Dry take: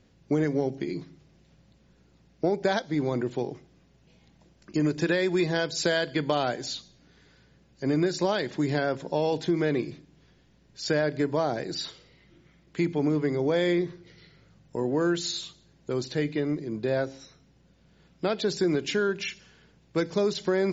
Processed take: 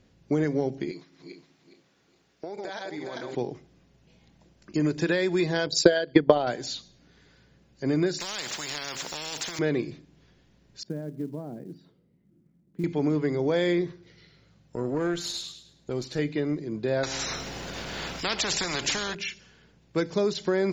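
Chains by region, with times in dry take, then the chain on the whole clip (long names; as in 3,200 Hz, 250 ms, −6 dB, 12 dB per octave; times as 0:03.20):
0:00.91–0:03.35: feedback delay that plays each chunk backwards 207 ms, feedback 49%, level −2 dB + high-pass filter 740 Hz 6 dB per octave + downward compressor 12 to 1, threshold −31 dBFS
0:05.66–0:06.47: spectral envelope exaggerated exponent 1.5 + transient designer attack +12 dB, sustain −8 dB
0:08.20–0:09.59: spectral tilt +4.5 dB per octave + downward compressor 2.5 to 1, threshold −30 dBFS + every bin compressed towards the loudest bin 4 to 1
0:10.83–0:12.84: resonant band-pass 200 Hz, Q 2 + floating-point word with a short mantissa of 4 bits
0:13.92–0:16.19: tube saturation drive 20 dB, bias 0.5 + delay with a high-pass on its return 105 ms, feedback 34%, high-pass 2,300 Hz, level −6 dB
0:17.03–0:19.15: upward compression, threshold −37 dBFS + every bin compressed towards the loudest bin 4 to 1
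whole clip: no processing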